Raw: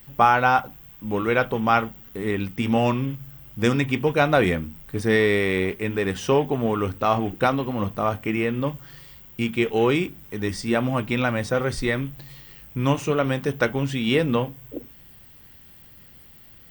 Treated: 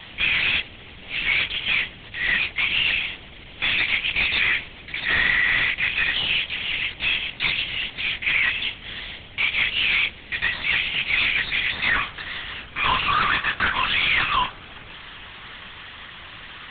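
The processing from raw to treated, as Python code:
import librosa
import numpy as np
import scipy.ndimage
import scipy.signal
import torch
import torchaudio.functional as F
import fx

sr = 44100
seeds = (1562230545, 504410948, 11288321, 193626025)

y = fx.steep_highpass(x, sr, hz=fx.steps((0.0, 1900.0), (11.73, 970.0)), slope=96)
y = fx.fuzz(y, sr, gain_db=49.0, gate_db=-50.0)
y = fx.lpc_vocoder(y, sr, seeds[0], excitation='whisper', order=8)
y = F.gain(torch.from_numpy(y), -5.0).numpy()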